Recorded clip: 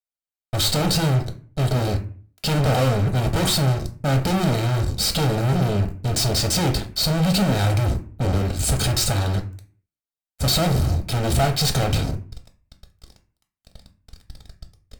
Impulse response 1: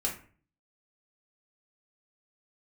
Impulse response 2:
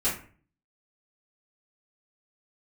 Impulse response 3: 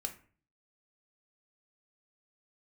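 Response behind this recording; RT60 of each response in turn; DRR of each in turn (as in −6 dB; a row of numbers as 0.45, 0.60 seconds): 3; 0.45, 0.45, 0.45 seconds; −2.5, −12.0, 4.0 decibels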